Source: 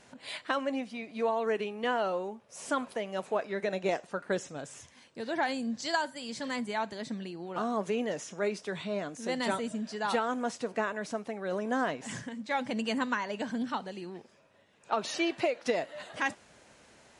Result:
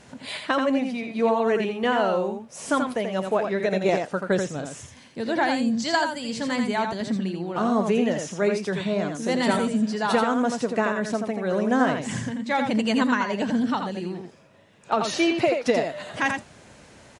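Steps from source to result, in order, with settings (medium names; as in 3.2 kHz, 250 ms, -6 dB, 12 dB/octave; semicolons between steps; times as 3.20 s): peaking EQ 95 Hz +8 dB 2.8 oct; on a send: delay 84 ms -5.5 dB; on the sum: trim +6 dB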